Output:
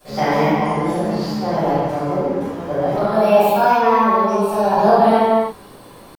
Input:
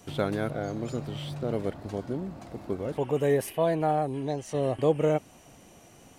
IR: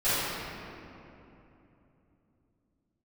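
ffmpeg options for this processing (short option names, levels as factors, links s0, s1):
-filter_complex "[0:a]asetrate=64194,aresample=44100,atempo=0.686977[s0];[1:a]atrim=start_sample=2205,afade=t=out:st=0.4:d=0.01,atrim=end_sample=18081[s1];[s0][s1]afir=irnorm=-1:irlink=0,volume=0.841"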